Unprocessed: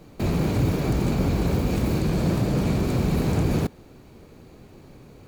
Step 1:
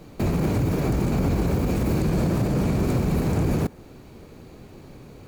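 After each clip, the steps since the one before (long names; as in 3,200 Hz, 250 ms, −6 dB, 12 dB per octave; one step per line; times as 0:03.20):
brickwall limiter −17.5 dBFS, peak gain reduction 6 dB
dynamic equaliser 3,700 Hz, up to −5 dB, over −55 dBFS, Q 1.3
level +3 dB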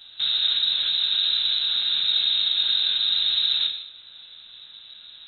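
voice inversion scrambler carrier 3,900 Hz
reverb whose tail is shaped and stops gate 260 ms falling, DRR 1 dB
level −3.5 dB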